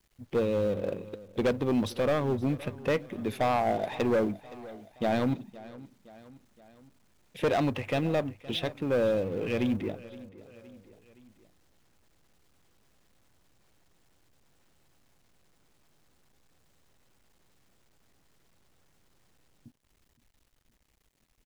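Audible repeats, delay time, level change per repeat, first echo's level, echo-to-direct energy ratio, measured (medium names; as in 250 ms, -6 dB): 3, 518 ms, -5.0 dB, -19.0 dB, -17.5 dB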